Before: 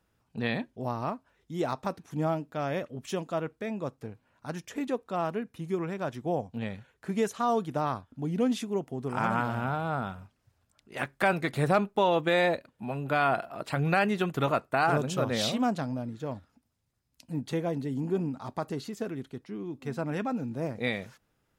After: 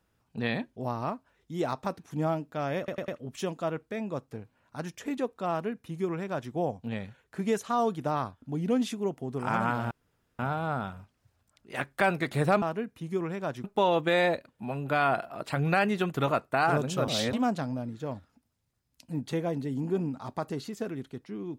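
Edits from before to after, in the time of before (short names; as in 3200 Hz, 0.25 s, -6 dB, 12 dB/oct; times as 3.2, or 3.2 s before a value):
2.78 stutter 0.10 s, 4 plays
5.2–6.22 copy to 11.84
9.61 insert room tone 0.48 s
15.28–15.53 reverse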